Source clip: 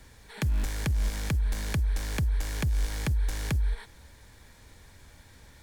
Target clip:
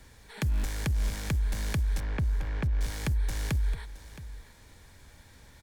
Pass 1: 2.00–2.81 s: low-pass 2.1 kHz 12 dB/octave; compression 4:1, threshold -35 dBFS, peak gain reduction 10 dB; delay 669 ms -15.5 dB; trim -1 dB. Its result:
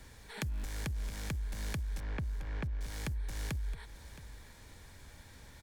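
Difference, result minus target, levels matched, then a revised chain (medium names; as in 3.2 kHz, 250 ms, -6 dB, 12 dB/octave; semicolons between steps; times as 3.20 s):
compression: peak gain reduction +10 dB
2.00–2.81 s: low-pass 2.1 kHz 12 dB/octave; delay 669 ms -15.5 dB; trim -1 dB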